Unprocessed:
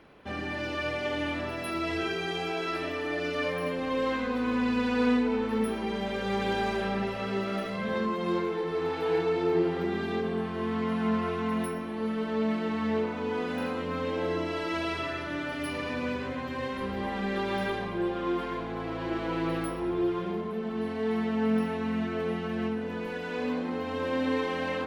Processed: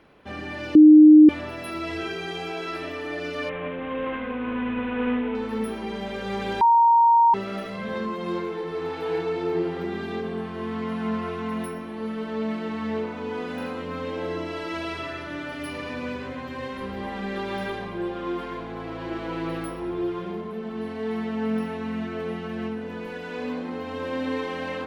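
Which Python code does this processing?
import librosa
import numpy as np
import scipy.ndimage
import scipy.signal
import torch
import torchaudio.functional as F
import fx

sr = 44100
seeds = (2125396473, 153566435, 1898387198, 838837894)

y = fx.cvsd(x, sr, bps=16000, at=(3.49, 5.35))
y = fx.edit(y, sr, fx.bleep(start_s=0.75, length_s=0.54, hz=306.0, db=-6.5),
    fx.bleep(start_s=6.61, length_s=0.73, hz=931.0, db=-13.0), tone=tone)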